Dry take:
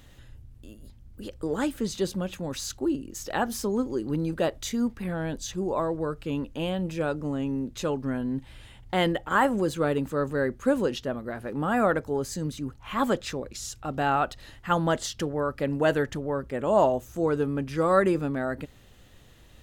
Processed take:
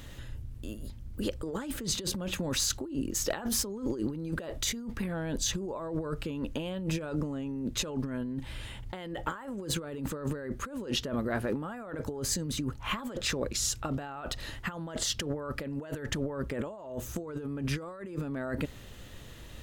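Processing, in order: compressor with a negative ratio -35 dBFS, ratio -1; band-stop 760 Hz, Q 13

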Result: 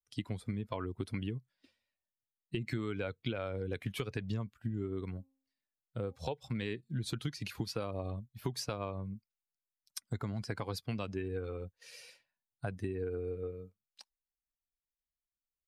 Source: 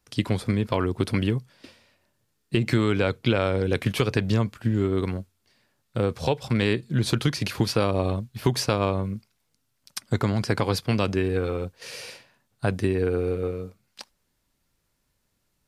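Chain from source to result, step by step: expander on every frequency bin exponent 1.5; 5.10–6.16 s: de-hum 267.1 Hz, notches 4; compression 2.5:1, threshold -30 dBFS, peak gain reduction 9 dB; trim -5.5 dB

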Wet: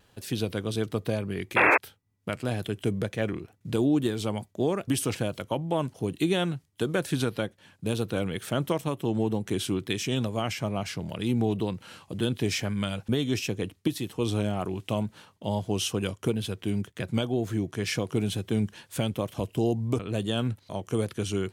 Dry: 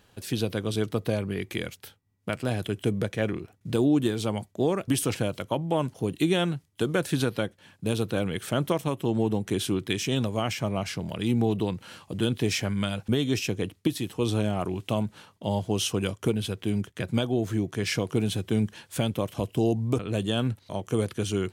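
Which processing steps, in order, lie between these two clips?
painted sound noise, 1.56–1.78 s, 270–2700 Hz -18 dBFS; wow and flutter 41 cents; trim -1.5 dB

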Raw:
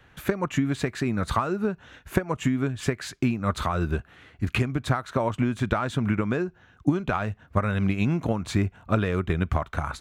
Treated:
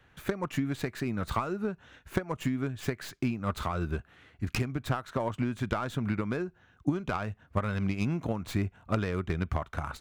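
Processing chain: tracing distortion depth 0.15 ms; trim -6 dB

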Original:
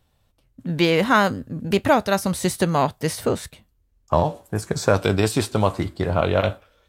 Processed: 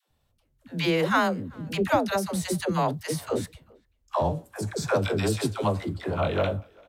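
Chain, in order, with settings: phase dispersion lows, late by 97 ms, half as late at 460 Hz; speakerphone echo 390 ms, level -27 dB; trim -5.5 dB

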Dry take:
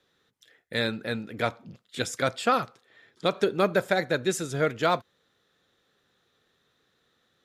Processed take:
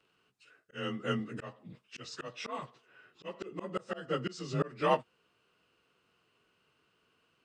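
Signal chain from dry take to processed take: frequency axis rescaled in octaves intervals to 90%; slow attack 326 ms

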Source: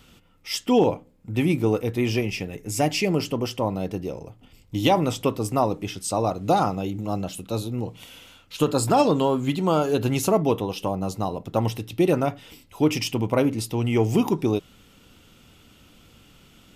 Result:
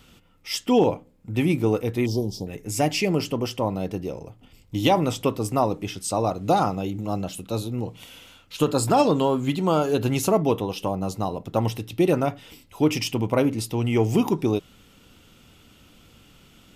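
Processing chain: 2.06–2.47 s: elliptic band-stop 960–4000 Hz, stop band 40 dB

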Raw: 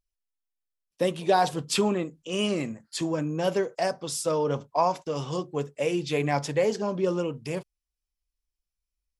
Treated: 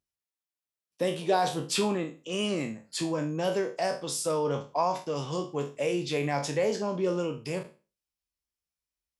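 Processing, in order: spectral sustain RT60 0.33 s; high-pass 90 Hz; in parallel at -3 dB: peak limiter -20 dBFS, peak gain reduction 11 dB; on the sum: trim -6.5 dB

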